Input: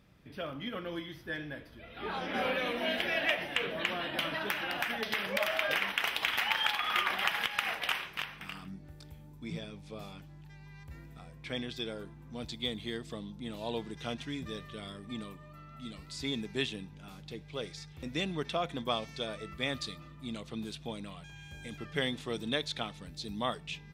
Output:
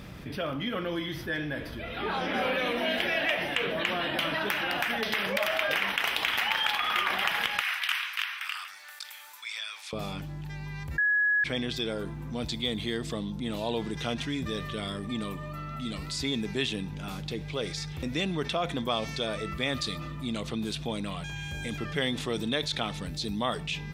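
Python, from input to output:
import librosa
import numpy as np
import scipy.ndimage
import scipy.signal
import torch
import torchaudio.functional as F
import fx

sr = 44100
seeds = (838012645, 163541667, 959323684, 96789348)

y = fx.highpass(x, sr, hz=1200.0, slope=24, at=(7.61, 9.93))
y = fx.edit(y, sr, fx.bleep(start_s=10.98, length_s=0.46, hz=1680.0, db=-21.5), tone=tone)
y = fx.env_flatten(y, sr, amount_pct=50)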